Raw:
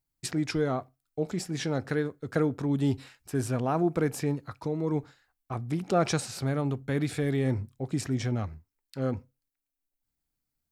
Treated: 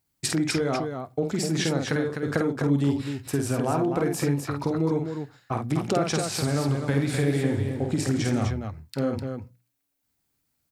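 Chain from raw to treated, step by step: HPF 63 Hz; notches 60/120/180 Hz; compressor 5:1, threshold -31 dBFS, peak gain reduction 11 dB; loudspeakers at several distances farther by 17 m -5 dB, 87 m -6 dB; 6.4–8.47 warbling echo 84 ms, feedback 78%, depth 131 cents, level -14 dB; gain +8.5 dB

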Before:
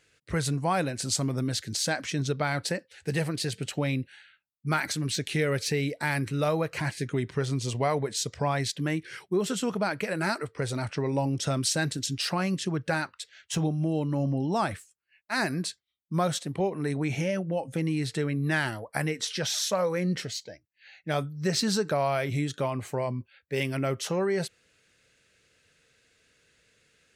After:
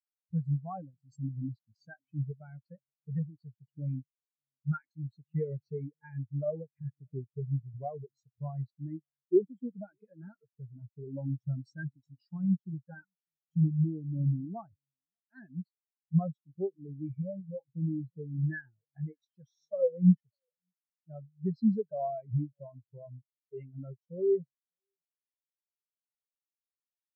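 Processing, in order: bell 500 Hz -2 dB 1.8 oct; echo 0.595 s -17 dB; spectral expander 4:1

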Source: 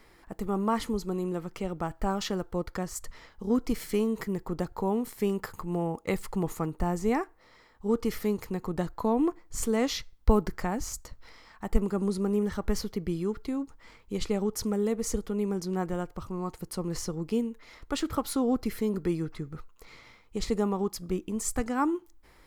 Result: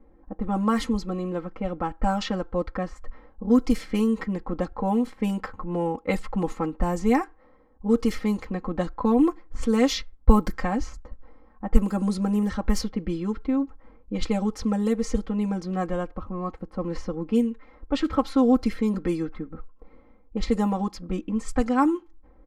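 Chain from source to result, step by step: low-pass opened by the level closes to 500 Hz, open at -22.5 dBFS; comb 3.8 ms, depth 99%; gain +2 dB

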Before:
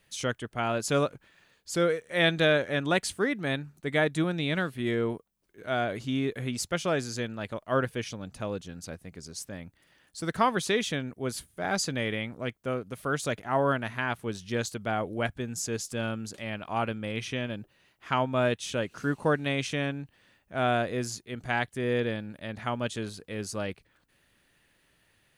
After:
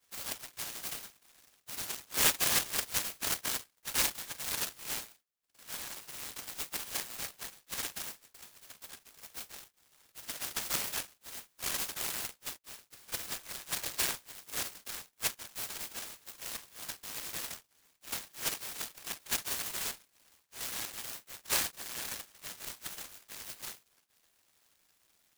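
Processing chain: Chebyshev high-pass 1600 Hz, order 10; reverb, pre-delay 3 ms, DRR -2.5 dB; noise-modulated delay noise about 4600 Hz, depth 0.2 ms; gain -8.5 dB

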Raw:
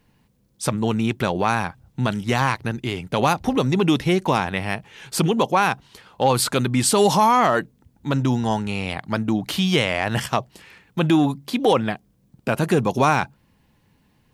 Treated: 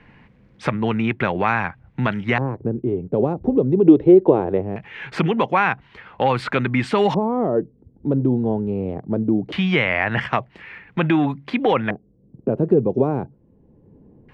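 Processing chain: spectral gain 3.86–4.62, 300–4200 Hz +9 dB; LFO low-pass square 0.21 Hz 430–2100 Hz; three-band squash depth 40%; gain -1 dB

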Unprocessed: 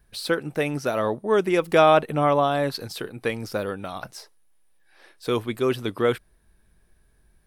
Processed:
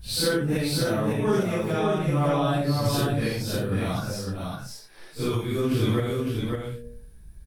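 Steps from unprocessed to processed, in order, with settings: phase scrambler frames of 0.2 s; tone controls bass +15 dB, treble +7 dB; de-hum 118.6 Hz, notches 5; compressor 4:1, threshold -25 dBFS, peak gain reduction 13.5 dB; random-step tremolo; echo 0.554 s -4 dB; gain +4.5 dB

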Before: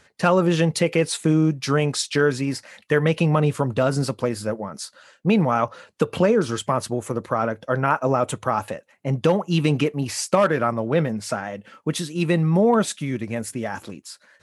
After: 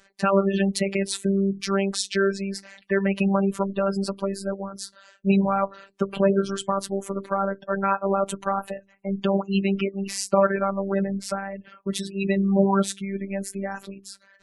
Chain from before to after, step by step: spectral gate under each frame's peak -25 dB strong; de-hum 87.51 Hz, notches 4; robotiser 196 Hz

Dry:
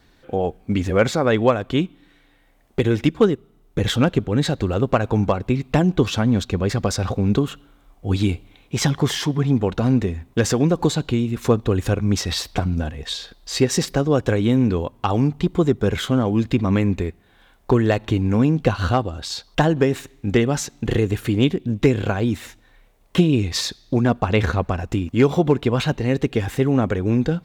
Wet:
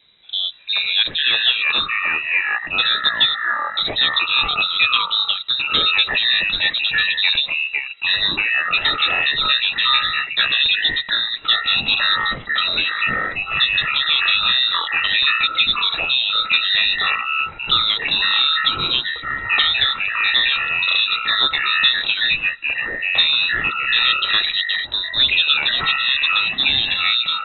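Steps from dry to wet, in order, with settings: inverted band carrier 3900 Hz; echoes that change speed 0.261 s, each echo -6 st, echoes 3; gain -1.5 dB

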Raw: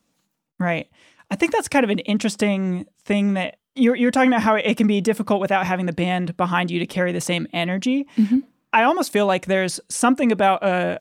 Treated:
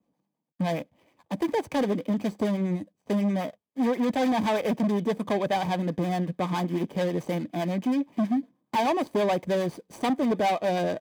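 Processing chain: median filter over 25 samples; harmonic tremolo 9.5 Hz, depth 50%, crossover 560 Hz; overloaded stage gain 20 dB; notch comb 1400 Hz

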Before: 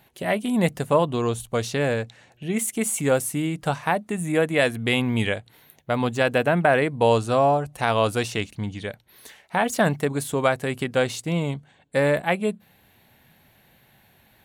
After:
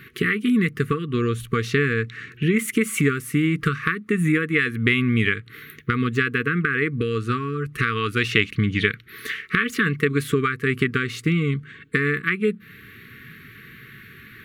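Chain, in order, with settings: graphic EQ 125/250/500/1000/2000/8000 Hz +7/+4/+6/+9/+11/-7 dB; compressor 5:1, threshold -24 dBFS, peak gain reduction 18 dB; brick-wall FIR band-stop 470–1100 Hz; 7.94–10.27 dynamic EQ 3000 Hz, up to +6 dB, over -44 dBFS, Q 1.2; gain +7 dB

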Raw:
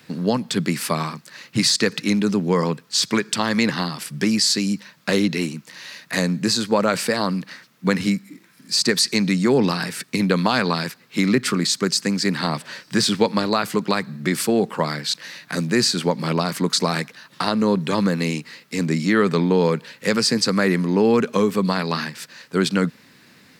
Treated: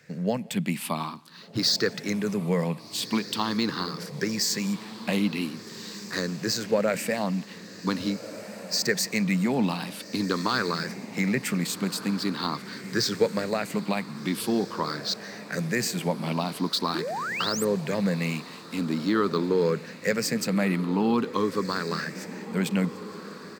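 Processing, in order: moving spectral ripple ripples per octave 0.54, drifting +0.45 Hz, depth 11 dB; on a send: diffused feedback echo 1.555 s, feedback 47%, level -13.5 dB; on the sum: painted sound rise, 16.94–17.65, 290–9200 Hz -23 dBFS; outdoor echo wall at 30 m, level -26 dB; decimation joined by straight lines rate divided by 2×; gain -8 dB

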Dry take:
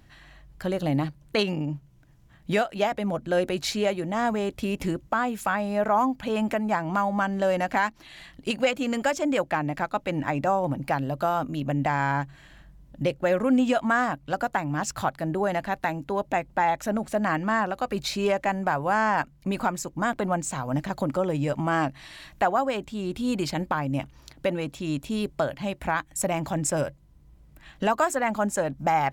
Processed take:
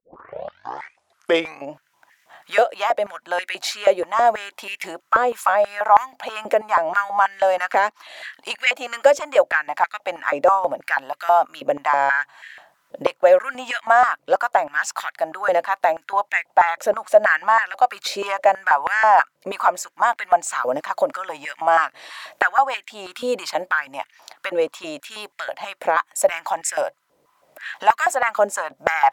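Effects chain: tape start at the beginning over 1.72 s; recorder AGC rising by 8.8 dB/s; stepped high-pass 6.2 Hz 510–1900 Hz; gain +3 dB

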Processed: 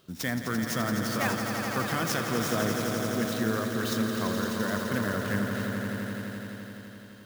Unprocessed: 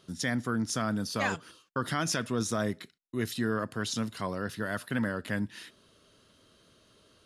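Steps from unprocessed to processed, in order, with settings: on a send: swelling echo 85 ms, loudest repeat 5, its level -8 dB; on the sum: clock jitter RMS 0.024 ms

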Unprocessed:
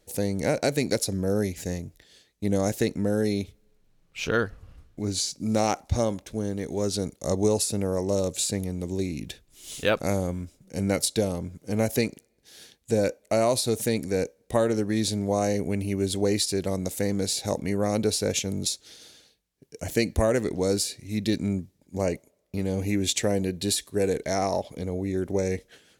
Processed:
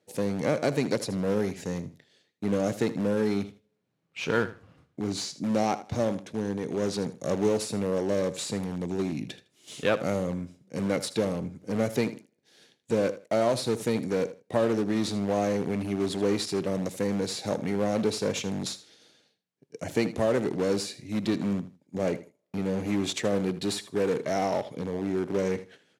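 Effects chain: one diode to ground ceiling -14 dBFS; in parallel at -11.5 dB: wrapped overs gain 24.5 dB; on the sum: Bessel low-pass 11000 Hz, order 2; high shelf 4800 Hz -10.5 dB; gate -48 dBFS, range -7 dB; HPF 120 Hz 24 dB/oct; on a send: feedback echo 79 ms, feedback 20%, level -15 dB

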